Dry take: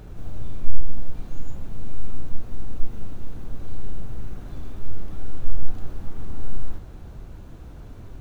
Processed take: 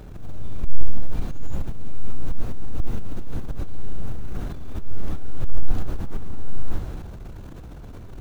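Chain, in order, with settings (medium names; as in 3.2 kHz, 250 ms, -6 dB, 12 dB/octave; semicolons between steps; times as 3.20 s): transient shaper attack -8 dB, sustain +8 dB; trim +1 dB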